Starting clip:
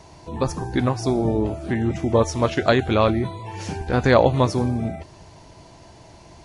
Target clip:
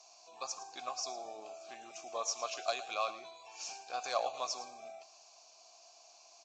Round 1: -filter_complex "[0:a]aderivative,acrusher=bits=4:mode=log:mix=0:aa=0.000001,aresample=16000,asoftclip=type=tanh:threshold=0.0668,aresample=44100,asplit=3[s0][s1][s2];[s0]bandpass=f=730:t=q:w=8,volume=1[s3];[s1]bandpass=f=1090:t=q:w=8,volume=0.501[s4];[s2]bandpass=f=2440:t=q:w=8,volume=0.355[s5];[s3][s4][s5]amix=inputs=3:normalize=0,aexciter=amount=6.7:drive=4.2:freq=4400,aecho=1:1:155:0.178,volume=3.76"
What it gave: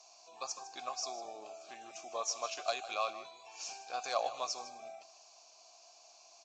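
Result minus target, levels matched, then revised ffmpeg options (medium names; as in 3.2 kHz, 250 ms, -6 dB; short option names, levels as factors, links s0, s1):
echo 46 ms late
-filter_complex "[0:a]aderivative,acrusher=bits=4:mode=log:mix=0:aa=0.000001,aresample=16000,asoftclip=type=tanh:threshold=0.0668,aresample=44100,asplit=3[s0][s1][s2];[s0]bandpass=f=730:t=q:w=8,volume=1[s3];[s1]bandpass=f=1090:t=q:w=8,volume=0.501[s4];[s2]bandpass=f=2440:t=q:w=8,volume=0.355[s5];[s3][s4][s5]amix=inputs=3:normalize=0,aexciter=amount=6.7:drive=4.2:freq=4400,aecho=1:1:109:0.178,volume=3.76"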